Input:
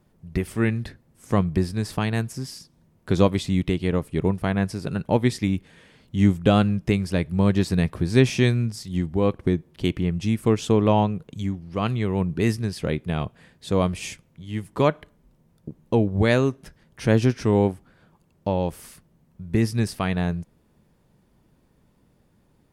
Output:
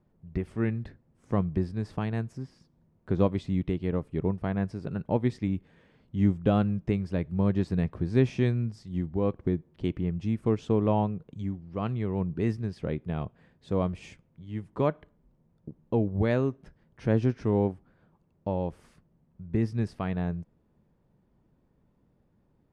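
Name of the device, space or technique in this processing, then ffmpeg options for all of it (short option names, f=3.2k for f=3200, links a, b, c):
through cloth: -filter_complex "[0:a]asettb=1/sr,asplit=3[a][b][c];[a]atrim=end=2.374[d];[b]atrim=start=2.37:end=3.2,asetpts=PTS-STARTPTS,afade=t=in:d=0.004:c=qsin,afade=t=out:st=0.826:d=0.004:c=qsin,acrossover=split=2700[e][f];[f]acompressor=threshold=-45dB:ratio=4:attack=1:release=60[g];[e][g]amix=inputs=2:normalize=0[h];[c]atrim=start=3.196[i];[d][h]acrossfade=d=0.004:c1=hsin:c2=qsin[j];[j][i]acrossfade=d=0.004:c1=qsin:c2=hsin,lowpass=7.6k,highshelf=f=2.3k:g=-14,volume=-5.5dB"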